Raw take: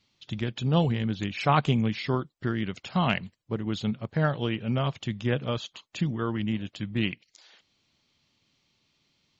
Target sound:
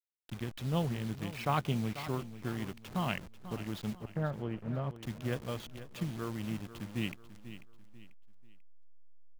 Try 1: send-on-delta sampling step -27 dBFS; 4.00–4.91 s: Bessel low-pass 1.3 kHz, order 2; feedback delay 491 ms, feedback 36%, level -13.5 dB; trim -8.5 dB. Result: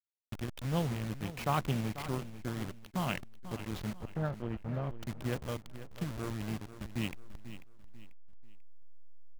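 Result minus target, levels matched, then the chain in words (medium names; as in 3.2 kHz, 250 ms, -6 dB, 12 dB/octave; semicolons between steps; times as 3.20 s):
send-on-delta sampling: distortion +7 dB
send-on-delta sampling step -33.5 dBFS; 4.00–4.91 s: Bessel low-pass 1.3 kHz, order 2; feedback delay 491 ms, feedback 36%, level -13.5 dB; trim -8.5 dB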